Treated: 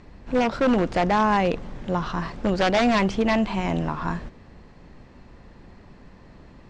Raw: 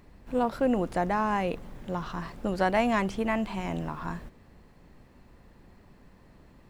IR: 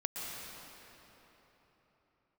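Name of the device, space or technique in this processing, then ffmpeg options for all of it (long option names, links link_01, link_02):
synthesiser wavefolder: -af "aeval=exprs='0.0891*(abs(mod(val(0)/0.0891+3,4)-2)-1)':channel_layout=same,lowpass=frequency=6800:width=0.5412,lowpass=frequency=6800:width=1.3066,volume=7.5dB"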